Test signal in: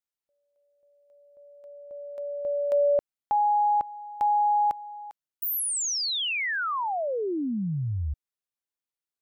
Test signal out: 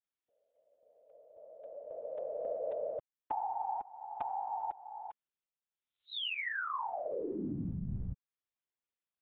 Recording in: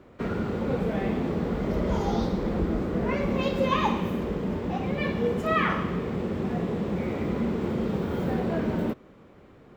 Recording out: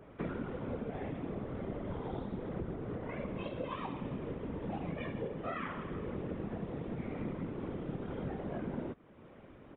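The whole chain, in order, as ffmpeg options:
-af "acompressor=threshold=-33dB:ratio=12:attack=29:release=430:knee=6:detection=rms,afftfilt=real='hypot(re,im)*cos(2*PI*random(0))':imag='hypot(re,im)*sin(2*PI*random(1))':win_size=512:overlap=0.75,aresample=8000,aresample=44100,adynamicequalizer=threshold=0.00158:dfrequency=2400:dqfactor=0.7:tfrequency=2400:tqfactor=0.7:attack=5:release=100:ratio=0.438:range=1.5:mode=cutabove:tftype=highshelf,volume=3.5dB"

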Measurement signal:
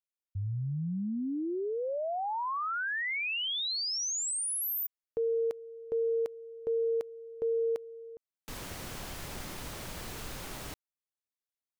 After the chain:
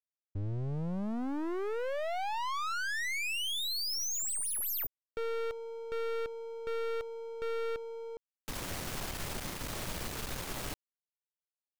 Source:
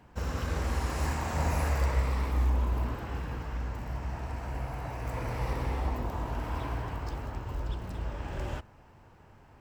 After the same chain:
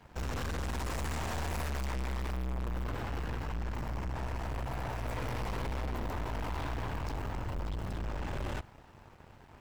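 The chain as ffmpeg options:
-af "aeval=exprs='sgn(val(0))*max(abs(val(0))-0.001,0)':c=same,aeval=exprs='(tanh(126*val(0)+0.55)-tanh(0.55))/126':c=same,volume=8dB"

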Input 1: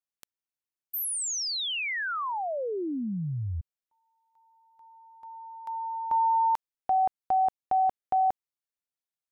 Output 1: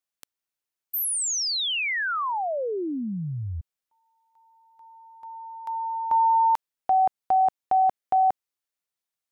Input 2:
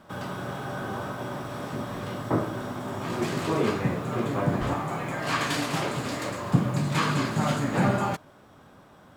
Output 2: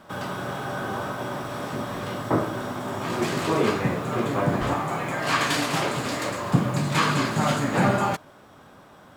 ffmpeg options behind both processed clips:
-af "lowshelf=f=300:g=-4.5,volume=4.5dB"

